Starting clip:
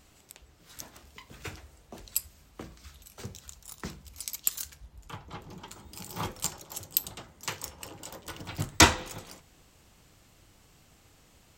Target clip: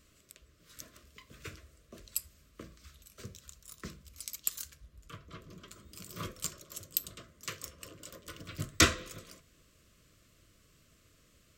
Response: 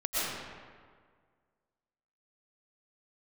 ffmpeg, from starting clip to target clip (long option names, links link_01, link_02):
-af "asuperstop=centerf=830:order=12:qfactor=2.4,volume=-5dB"